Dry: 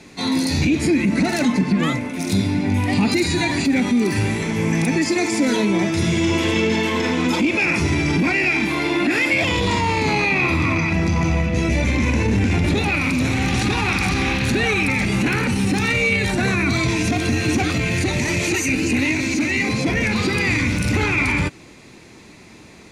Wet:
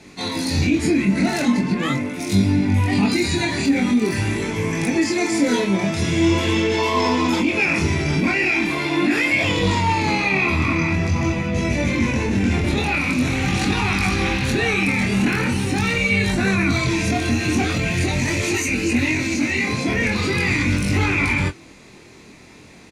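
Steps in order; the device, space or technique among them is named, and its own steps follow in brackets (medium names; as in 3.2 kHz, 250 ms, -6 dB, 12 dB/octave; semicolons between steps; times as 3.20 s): 6.78–7.28 s: graphic EQ with 31 bands 630 Hz +7 dB, 1 kHz +10 dB, 1.6 kHz -7 dB, 5 kHz +7 dB; double-tracked vocal (doubling 21 ms -11 dB; chorus 0.43 Hz, delay 20 ms, depth 5.9 ms); trim +2 dB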